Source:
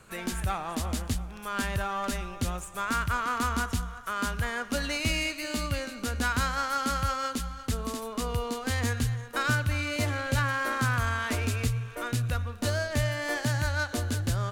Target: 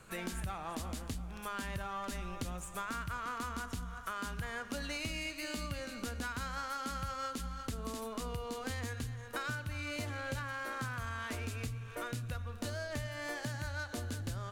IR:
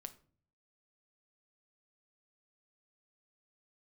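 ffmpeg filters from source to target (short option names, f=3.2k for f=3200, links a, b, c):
-filter_complex "[0:a]acompressor=threshold=-34dB:ratio=5,asplit=2[a][b];[1:a]atrim=start_sample=2205[c];[b][c]afir=irnorm=-1:irlink=0,volume=5.5dB[d];[a][d]amix=inputs=2:normalize=0,volume=-8.5dB"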